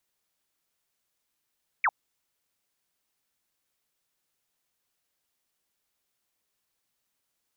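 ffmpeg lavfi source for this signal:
-f lavfi -i "aevalsrc='0.1*clip(t/0.002,0,1)*clip((0.05-t)/0.002,0,1)*sin(2*PI*2500*0.05/log(730/2500)*(exp(log(730/2500)*t/0.05)-1))':d=0.05:s=44100"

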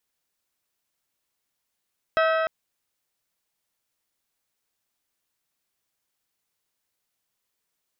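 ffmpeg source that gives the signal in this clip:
-f lavfi -i "aevalsrc='0.112*pow(10,-3*t/3.57)*sin(2*PI*645*t)+0.075*pow(10,-3*t/2.9)*sin(2*PI*1290*t)+0.0501*pow(10,-3*t/2.745)*sin(2*PI*1548*t)+0.0335*pow(10,-3*t/2.568)*sin(2*PI*1935*t)+0.0224*pow(10,-3*t/2.355)*sin(2*PI*2580*t)+0.015*pow(10,-3*t/2.203)*sin(2*PI*3225*t)+0.01*pow(10,-3*t/2.086)*sin(2*PI*3870*t)+0.00668*pow(10,-3*t/1.913)*sin(2*PI*5160*t)':d=0.3:s=44100"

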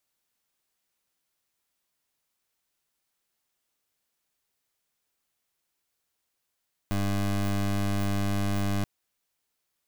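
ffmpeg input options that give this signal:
-f lavfi -i "aevalsrc='0.0473*(2*lt(mod(99.8*t,1),0.22)-1)':d=1.93:s=44100"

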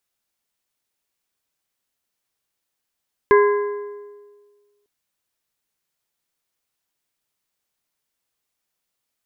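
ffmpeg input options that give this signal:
-f lavfi -i "aevalsrc='0.355*pow(10,-3*t/1.59)*sin(2*PI*411*t)+0.188*pow(10,-3*t/1.208)*sin(2*PI*1027.5*t)+0.1*pow(10,-3*t/1.049)*sin(2*PI*1644*t)+0.0531*pow(10,-3*t/0.981)*sin(2*PI*2055*t)':d=1.55:s=44100"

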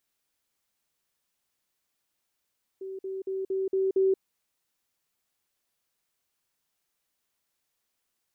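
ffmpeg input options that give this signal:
-f lavfi -i "aevalsrc='pow(10,(-34.5+3*floor(t/0.23))/20)*sin(2*PI*383*t)*clip(min(mod(t,0.23),0.18-mod(t,0.23))/0.005,0,1)':d=1.38:s=44100"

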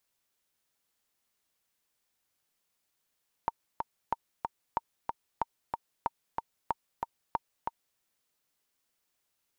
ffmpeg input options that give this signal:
-f lavfi -i "aevalsrc='pow(10,(-15-3.5*gte(mod(t,2*60/186),60/186))/20)*sin(2*PI*922*mod(t,60/186))*exp(-6.91*mod(t,60/186)/0.03)':d=4.51:s=44100"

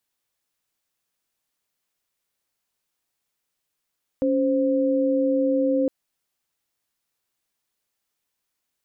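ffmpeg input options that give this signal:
-f lavfi -i "aevalsrc='0.0891*(sin(2*PI*277.18*t)+sin(2*PI*523.25*t))':d=1.66:s=44100"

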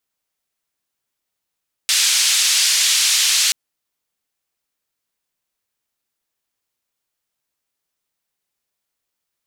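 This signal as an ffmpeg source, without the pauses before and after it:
-f lavfi -i "anoisesrc=c=white:d=1.63:r=44100:seed=1,highpass=f=2900,lowpass=f=6700,volume=-3.7dB"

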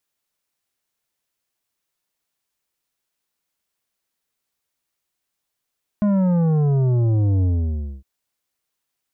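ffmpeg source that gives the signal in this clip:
-f lavfi -i "aevalsrc='0.158*clip((2.01-t)/0.6,0,1)*tanh(2.99*sin(2*PI*210*2.01/log(65/210)*(exp(log(65/210)*t/2.01)-1)))/tanh(2.99)':d=2.01:s=44100"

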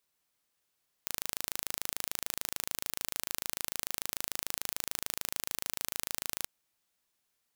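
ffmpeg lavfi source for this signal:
-f lavfi -i "aevalsrc='0.501*eq(mod(n,1646),0)':d=5.41:s=44100"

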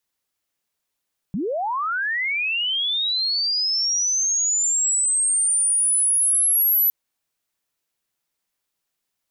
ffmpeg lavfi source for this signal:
-f lavfi -i "aevalsrc='pow(10,(-22+7*t/5.56)/20)*sin(2*PI*(160*t+11840*t*t/(2*5.56)))':d=5.56:s=44100"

